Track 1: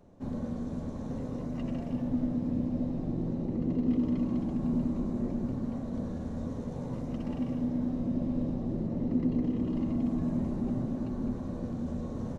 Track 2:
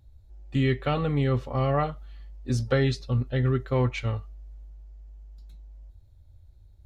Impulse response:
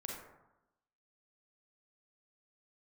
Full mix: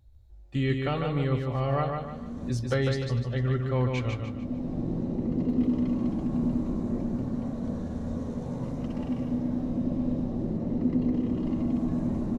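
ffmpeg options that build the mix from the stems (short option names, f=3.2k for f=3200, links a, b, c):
-filter_complex "[0:a]adelay=1700,volume=2.5dB,asplit=2[a][b];[b]volume=-14dB[c];[1:a]volume=-3.5dB,asplit=3[d][e][f];[e]volume=-4.5dB[g];[f]apad=whole_len=621005[h];[a][h]sidechaincompress=threshold=-42dB:ratio=8:attack=16:release=538[i];[c][g]amix=inputs=2:normalize=0,aecho=0:1:149|298|447|596|745:1|0.38|0.144|0.0549|0.0209[j];[i][d][j]amix=inputs=3:normalize=0"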